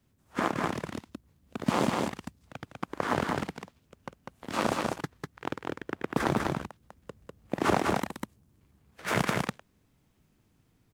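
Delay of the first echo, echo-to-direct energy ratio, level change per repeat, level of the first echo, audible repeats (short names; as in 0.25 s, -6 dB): 0.198 s, -3.0 dB, no steady repeat, -3.0 dB, 1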